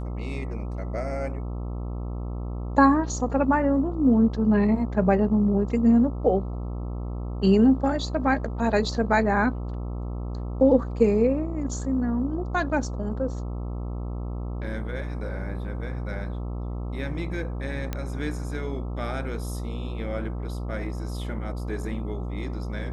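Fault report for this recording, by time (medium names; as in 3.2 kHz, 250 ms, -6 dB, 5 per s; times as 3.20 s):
buzz 60 Hz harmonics 22 -31 dBFS
17.93 s: pop -15 dBFS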